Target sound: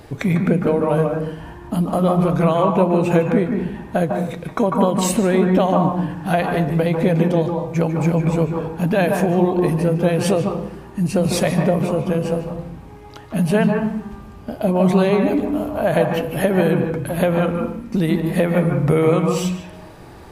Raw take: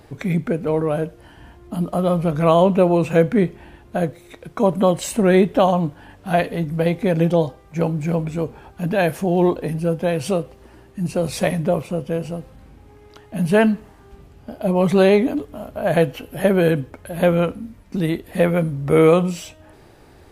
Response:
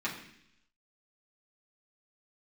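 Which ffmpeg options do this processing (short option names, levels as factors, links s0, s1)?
-filter_complex "[0:a]acompressor=threshold=0.1:ratio=6,asplit=2[s0][s1];[s1]equalizer=f=125:t=o:w=1:g=11,equalizer=f=500:t=o:w=1:g=8,equalizer=f=1000:t=o:w=1:g=12[s2];[1:a]atrim=start_sample=2205,adelay=145[s3];[s2][s3]afir=irnorm=-1:irlink=0,volume=0.168[s4];[s0][s4]amix=inputs=2:normalize=0,volume=1.88"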